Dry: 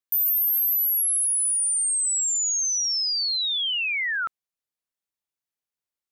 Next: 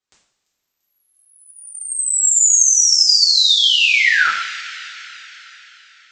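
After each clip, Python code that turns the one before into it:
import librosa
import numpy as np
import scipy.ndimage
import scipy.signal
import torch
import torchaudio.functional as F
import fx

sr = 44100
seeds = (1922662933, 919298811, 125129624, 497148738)

y = scipy.signal.sosfilt(scipy.signal.butter(12, 7800.0, 'lowpass', fs=sr, output='sos'), x)
y = fx.echo_wet_highpass(y, sr, ms=342, feedback_pct=60, hz=3600.0, wet_db=-17.5)
y = fx.rev_double_slope(y, sr, seeds[0], early_s=0.58, late_s=4.2, knee_db=-19, drr_db=-8.0)
y = F.gain(torch.from_numpy(y), 3.5).numpy()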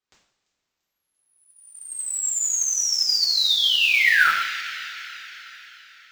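y = fx.rider(x, sr, range_db=10, speed_s=0.5)
y = fx.air_absorb(y, sr, metres=75.0)
y = fx.mod_noise(y, sr, seeds[1], snr_db=23)
y = F.gain(torch.from_numpy(y), -3.5).numpy()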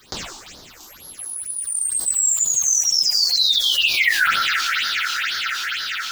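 y = fx.phaser_stages(x, sr, stages=6, low_hz=130.0, high_hz=2500.0, hz=2.1, feedback_pct=25)
y = fx.env_flatten(y, sr, amount_pct=70)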